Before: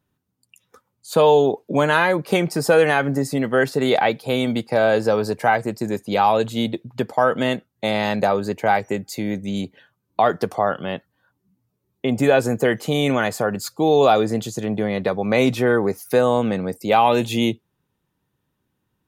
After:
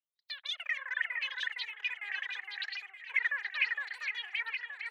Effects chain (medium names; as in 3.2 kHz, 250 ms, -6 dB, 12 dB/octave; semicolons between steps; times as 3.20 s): wah-wah 0.21 Hz 450–1100 Hz, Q 12; wide varispeed 3.89×; tone controls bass +9 dB, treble -9 dB; on a send: echo whose repeats swap between lows and highs 461 ms, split 2.2 kHz, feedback 63%, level -2.5 dB; on the sum: trim -5 dB